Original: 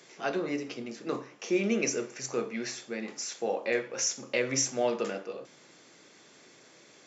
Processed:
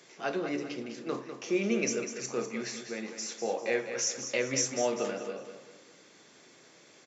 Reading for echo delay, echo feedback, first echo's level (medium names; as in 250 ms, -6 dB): 199 ms, 39%, -9.0 dB